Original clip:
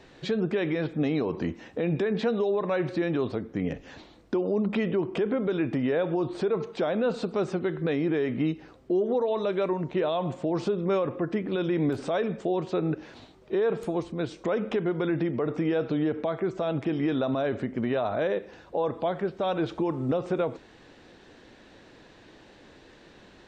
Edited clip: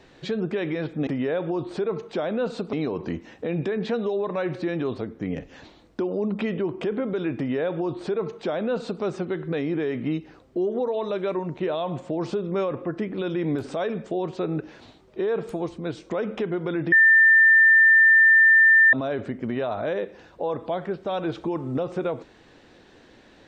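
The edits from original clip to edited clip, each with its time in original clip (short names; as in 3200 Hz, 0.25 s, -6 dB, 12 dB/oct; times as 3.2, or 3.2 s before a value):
5.71–7.37 copy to 1.07
15.26–17.27 bleep 1790 Hz -11.5 dBFS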